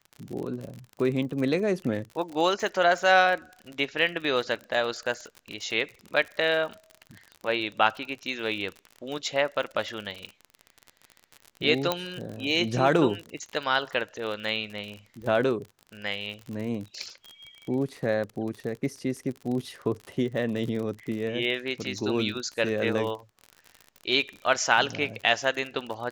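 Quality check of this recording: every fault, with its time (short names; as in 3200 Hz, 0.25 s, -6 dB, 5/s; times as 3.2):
crackle 50/s -33 dBFS
11.92 pop -10 dBFS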